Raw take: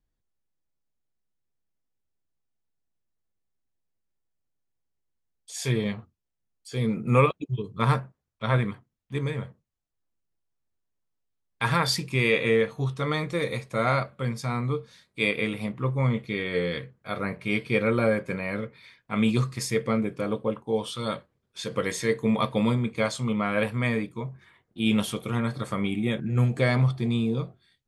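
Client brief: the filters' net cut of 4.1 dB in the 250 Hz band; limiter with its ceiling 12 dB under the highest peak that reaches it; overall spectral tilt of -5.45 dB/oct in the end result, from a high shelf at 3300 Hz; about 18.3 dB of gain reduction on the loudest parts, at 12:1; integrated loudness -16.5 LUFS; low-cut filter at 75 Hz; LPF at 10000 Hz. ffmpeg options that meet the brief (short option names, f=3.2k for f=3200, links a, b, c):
-af "highpass=75,lowpass=10k,equalizer=f=250:t=o:g=-5,highshelf=f=3.3k:g=-4.5,acompressor=threshold=-34dB:ratio=12,volume=24.5dB,alimiter=limit=-5dB:level=0:latency=1"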